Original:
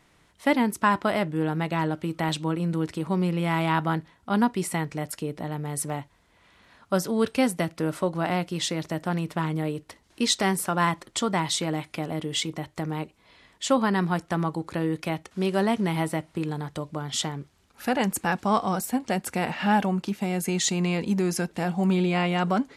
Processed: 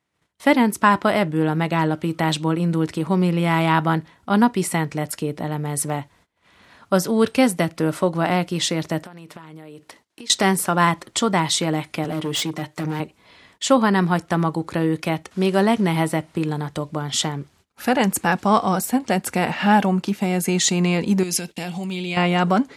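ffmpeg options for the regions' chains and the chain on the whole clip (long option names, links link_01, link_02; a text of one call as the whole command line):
ffmpeg -i in.wav -filter_complex "[0:a]asettb=1/sr,asplit=3[link_01][link_02][link_03];[link_01]atrim=end=9.034[link_04];[link_02]atrim=start=9.03:end=10.3,asetpts=PTS-STARTPTS,afade=type=in:duration=0.004:curve=qsin,afade=type=out:start_time=1.266:duration=0.004:curve=qsin,highpass=frequency=260:poles=1,acompressor=threshold=-41dB:ratio=12:attack=3.2:release=140:knee=1:detection=peak[link_05];[link_03]atrim=start=10.296[link_06];[link_04][link_05]acrossfade=duration=0.004:curve1=hsin:curve2=qsin[link_07];[link_07][link_06]acrossfade=duration=0.004:curve1=qsin:curve2=hsin,asettb=1/sr,asplit=3[link_08][link_09][link_10];[link_08]atrim=end=12.044[link_11];[link_09]atrim=start=12.04:end=13,asetpts=PTS-STARTPTS,afade=type=in:duration=0.004:curve=qsin,afade=type=out:start_time=0.956:duration=0.004:curve=qsin,highpass=140,aecho=1:1:6.6:0.53,atrim=end_sample=42336,asoftclip=type=hard:threshold=-26dB[link_12];[link_10]atrim=start=12.996[link_13];[link_11][link_12]acrossfade=duration=0.004:curve1=hsin:curve2=qsin[link_14];[link_14][link_13]acrossfade=duration=0.004:curve1=qsin:curve2=hsin,asettb=1/sr,asplit=3[link_15][link_16][link_17];[link_15]atrim=end=21.234[link_18];[link_16]atrim=start=21.23:end=22.17,asetpts=PTS-STARTPTS,afade=type=in:duration=0.004:curve=qsin,afade=type=out:start_time=0.936:duration=0.004:curve=qsin,agate=range=-33dB:threshold=-38dB:ratio=3:release=100:detection=peak,acompressor=threshold=-31dB:ratio=10:attack=3.2:release=140:knee=1:detection=peak,highshelf=frequency=2000:width_type=q:width=1.5:gain=9[link_19];[link_17]atrim=start=22.166[link_20];[link_18][link_19]acrossfade=duration=0.004:curve1=hsin:curve2=qsin[link_21];[link_21][link_20]acrossfade=duration=0.004:curve1=qsin:curve2=hsin,highpass=65,agate=range=-22dB:threshold=-58dB:ratio=16:detection=peak,volume=6dB" out.wav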